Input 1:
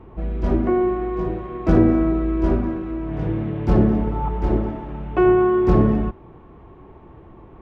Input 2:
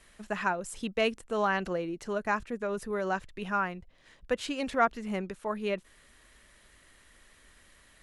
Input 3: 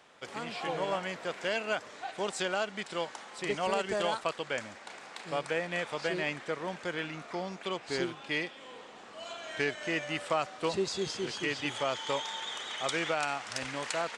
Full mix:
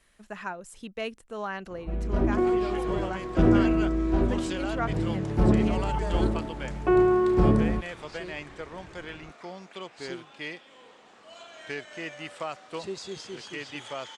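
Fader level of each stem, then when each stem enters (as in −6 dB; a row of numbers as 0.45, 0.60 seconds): −5.0, −6.0, −4.5 decibels; 1.70, 0.00, 2.10 seconds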